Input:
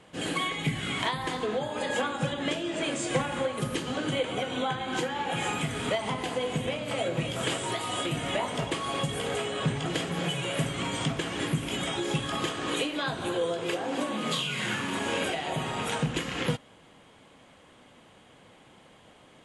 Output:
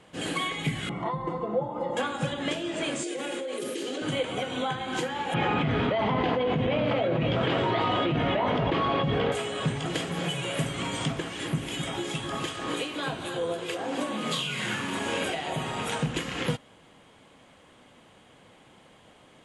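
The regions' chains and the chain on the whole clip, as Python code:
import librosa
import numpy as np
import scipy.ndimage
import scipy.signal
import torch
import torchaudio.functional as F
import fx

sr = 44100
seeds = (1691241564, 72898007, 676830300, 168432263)

y = fx.chain(x, sr, fx.savgol(points=65),
    fx.comb(ms=5.8, depth=0.77), at=(0.89, 1.97))
y = fx.chain(y, sr, fx.ladder_highpass(hz=320.0, resonance_pct=50),
    fx.peak_eq(hz=1000.0, db=-13.0, octaves=1.4),
    fx.env_flatten(amount_pct=100), at=(3.03, 4.02))
y = fx.chain(y, sr, fx.lowpass(hz=4300.0, slope=24),
    fx.high_shelf(hz=2500.0, db=-11.5),
    fx.env_flatten(amount_pct=100), at=(5.34, 9.32))
y = fx.chain(y, sr, fx.harmonic_tremolo(hz=2.6, depth_pct=50, crossover_hz=1800.0),
    fx.echo_single(ms=262, db=-8.0), at=(11.19, 13.79))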